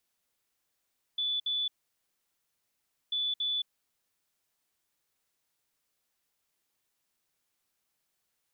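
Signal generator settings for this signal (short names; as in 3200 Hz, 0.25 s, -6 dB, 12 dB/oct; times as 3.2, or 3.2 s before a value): beep pattern sine 3470 Hz, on 0.22 s, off 0.06 s, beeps 2, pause 1.44 s, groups 2, -28 dBFS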